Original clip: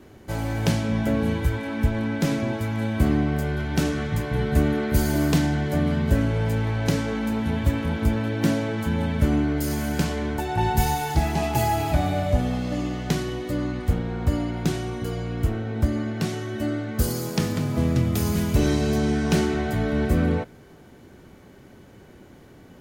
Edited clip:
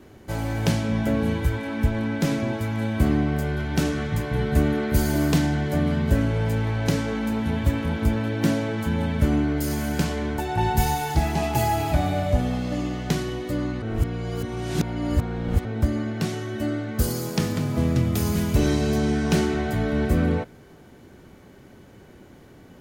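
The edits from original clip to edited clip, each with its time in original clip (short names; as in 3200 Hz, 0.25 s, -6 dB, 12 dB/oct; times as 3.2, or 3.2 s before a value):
13.82–15.65 reverse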